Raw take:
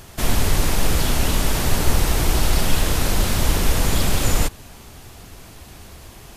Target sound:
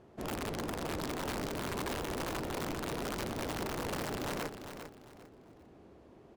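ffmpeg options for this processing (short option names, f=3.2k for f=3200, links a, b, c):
-filter_complex "[0:a]asplit=2[a][b];[b]asetrate=66075,aresample=44100,atempo=0.66742,volume=-14dB[c];[a][c]amix=inputs=2:normalize=0,bandpass=f=370:t=q:w=1.2:csg=0,aeval=exprs='(mod(14.1*val(0)+1,2)-1)/14.1':c=same,aecho=1:1:399|798|1197:0.355|0.0958|0.0259,volume=-7.5dB"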